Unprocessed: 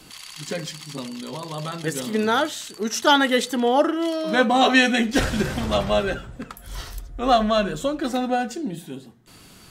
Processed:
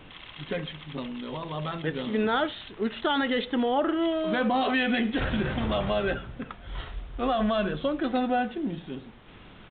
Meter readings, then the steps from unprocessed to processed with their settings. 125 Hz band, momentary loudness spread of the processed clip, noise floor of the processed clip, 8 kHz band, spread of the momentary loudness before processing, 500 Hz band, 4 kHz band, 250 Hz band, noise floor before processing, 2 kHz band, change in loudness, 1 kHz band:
-3.0 dB, 14 LU, -49 dBFS, under -40 dB, 19 LU, -5.5 dB, -8.5 dB, -4.0 dB, -48 dBFS, -7.0 dB, -6.5 dB, -7.0 dB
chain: limiter -15 dBFS, peak gain reduction 10 dB; added noise pink -49 dBFS; downsampling 8000 Hz; gain -2 dB

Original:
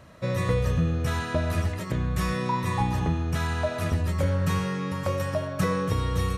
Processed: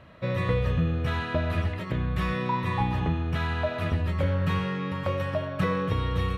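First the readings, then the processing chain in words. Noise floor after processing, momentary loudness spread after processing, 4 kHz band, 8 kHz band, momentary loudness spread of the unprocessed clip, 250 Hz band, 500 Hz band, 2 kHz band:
-34 dBFS, 4 LU, -1.0 dB, under -10 dB, 4 LU, -1.0 dB, -1.0 dB, +0.5 dB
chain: resonant high shelf 4600 Hz -12 dB, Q 1.5; gain -1 dB

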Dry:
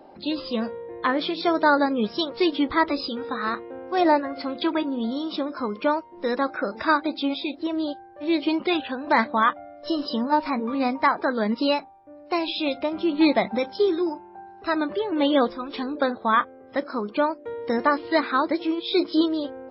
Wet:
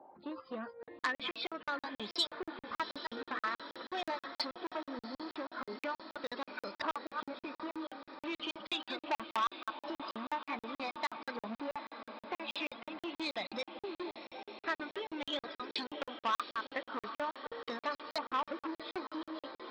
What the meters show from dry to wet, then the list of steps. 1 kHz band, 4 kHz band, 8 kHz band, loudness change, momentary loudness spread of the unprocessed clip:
-14.0 dB, -9.0 dB, n/a, -15.5 dB, 8 LU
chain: reverse delay 0.147 s, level -12.5 dB; compressor 4:1, threshold -29 dBFS, peak gain reduction 13 dB; HPF 82 Hz 12 dB/oct; gate -35 dBFS, range -6 dB; flange 0.15 Hz, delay 0.2 ms, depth 7.8 ms, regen +86%; high shelf 4000 Hz +11 dB; LFO low-pass saw up 0.44 Hz 920–4800 Hz; low shelf 280 Hz -7.5 dB; reverb removal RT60 0.69 s; diffused feedback echo 0.762 s, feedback 68%, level -12 dB; crackling interface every 0.16 s, samples 2048, zero, from 0.83; core saturation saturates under 2600 Hz; gain -1 dB

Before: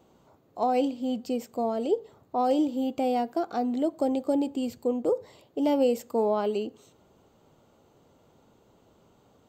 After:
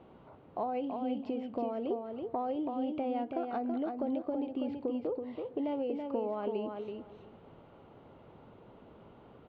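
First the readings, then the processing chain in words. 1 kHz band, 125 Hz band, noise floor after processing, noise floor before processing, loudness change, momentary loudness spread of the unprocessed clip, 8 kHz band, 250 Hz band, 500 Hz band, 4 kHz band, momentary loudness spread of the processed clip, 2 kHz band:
-7.5 dB, n/a, -57 dBFS, -63 dBFS, -8.0 dB, 7 LU, under -30 dB, -7.0 dB, -8.0 dB, -12.0 dB, 10 LU, -7.5 dB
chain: LPF 2900 Hz 24 dB/oct; compressor 6:1, threshold -38 dBFS, peak gain reduction 17.5 dB; on a send: feedback echo 0.329 s, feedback 16%, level -5 dB; on the sum: gain +4.5 dB

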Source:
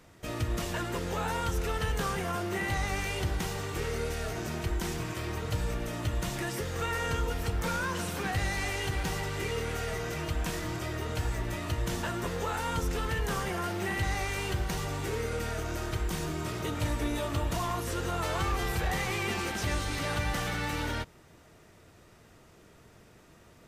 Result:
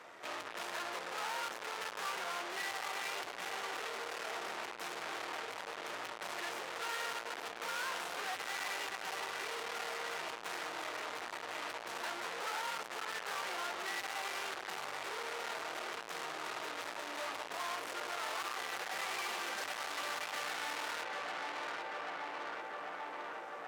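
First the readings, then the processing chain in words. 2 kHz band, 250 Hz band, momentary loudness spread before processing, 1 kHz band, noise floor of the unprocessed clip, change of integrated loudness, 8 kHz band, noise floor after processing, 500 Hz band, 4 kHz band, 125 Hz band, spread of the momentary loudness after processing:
-3.5 dB, -18.0 dB, 4 LU, -3.5 dB, -57 dBFS, -7.5 dB, -6.5 dB, -47 dBFS, -9.5 dB, -3.0 dB, -34.5 dB, 4 LU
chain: LPF 3700 Hz 6 dB/oct; high shelf 2600 Hz -8.5 dB; tape echo 0.788 s, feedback 79%, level -7.5 dB, low-pass 2200 Hz; tube stage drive 49 dB, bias 0.55; HPF 720 Hz 12 dB/oct; gain +14 dB

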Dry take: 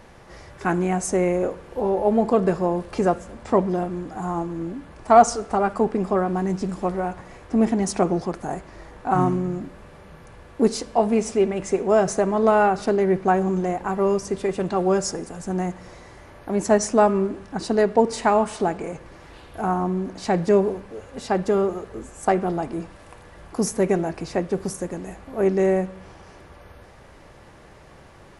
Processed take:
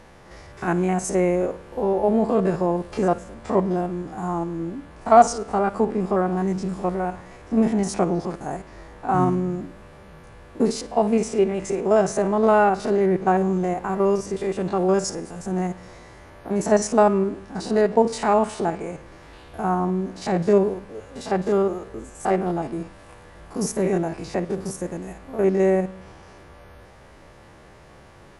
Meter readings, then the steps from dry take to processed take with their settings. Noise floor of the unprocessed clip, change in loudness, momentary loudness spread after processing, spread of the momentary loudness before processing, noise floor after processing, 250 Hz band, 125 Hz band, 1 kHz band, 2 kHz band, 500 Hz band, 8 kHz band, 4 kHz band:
-47 dBFS, 0.0 dB, 14 LU, 14 LU, -48 dBFS, +0.5 dB, +0.5 dB, 0.0 dB, -1.0 dB, 0.0 dB, -1.5 dB, -1.0 dB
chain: stepped spectrum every 50 ms; gain +1 dB

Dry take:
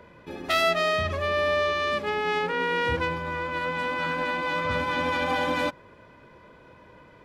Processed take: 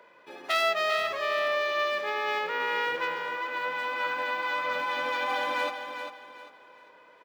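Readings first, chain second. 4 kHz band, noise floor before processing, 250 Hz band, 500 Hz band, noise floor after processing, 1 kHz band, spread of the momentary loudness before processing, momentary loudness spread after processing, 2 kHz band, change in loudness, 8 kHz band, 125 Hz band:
-2.0 dB, -52 dBFS, -13.5 dB, -4.0 dB, -56 dBFS, -2.0 dB, 6 LU, 12 LU, -1.5 dB, -2.5 dB, -3.0 dB, under -25 dB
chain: HPF 540 Hz 12 dB/oct; on a send: feedback echo 0.397 s, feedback 31%, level -8 dB; on the sum: decimation joined by straight lines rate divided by 2×; gain -2 dB

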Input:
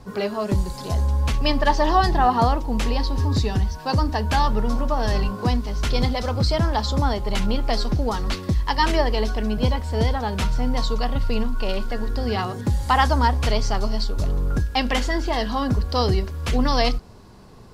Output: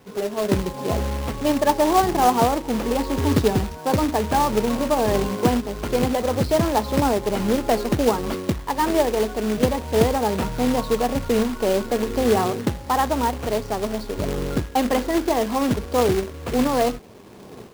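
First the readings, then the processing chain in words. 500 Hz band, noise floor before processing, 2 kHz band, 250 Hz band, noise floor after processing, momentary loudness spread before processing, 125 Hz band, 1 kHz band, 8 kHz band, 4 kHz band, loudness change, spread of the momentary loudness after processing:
+6.0 dB, -36 dBFS, -2.0 dB, +4.0 dB, -38 dBFS, 6 LU, -4.5 dB, +1.0 dB, +6.0 dB, -3.5 dB, +1.0 dB, 6 LU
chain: AGC gain up to 16.5 dB; added harmonics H 3 -28 dB, 8 -43 dB, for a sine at -0.5 dBFS; band-pass 410 Hz, Q 0.95; companded quantiser 4-bit

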